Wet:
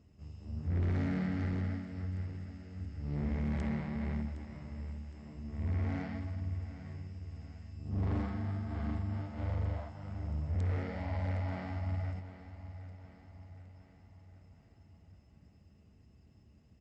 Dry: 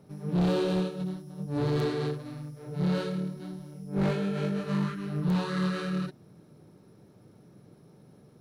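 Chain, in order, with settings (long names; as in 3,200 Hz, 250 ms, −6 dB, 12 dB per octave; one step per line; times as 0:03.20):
wrong playback speed 15 ips tape played at 7.5 ips
repeating echo 763 ms, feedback 53%, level −13.5 dB
level −6.5 dB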